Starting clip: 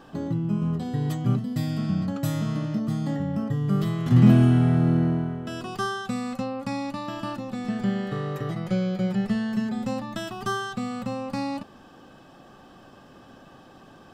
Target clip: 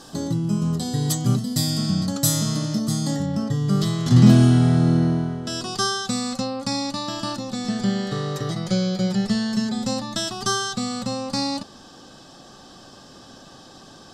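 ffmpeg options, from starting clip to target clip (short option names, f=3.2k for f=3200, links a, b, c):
-af "asetnsamples=n=441:p=0,asendcmd='3.26 lowpass f 5500',lowpass=10k,aexciter=amount=5.8:drive=7.5:freq=3.8k,volume=3dB"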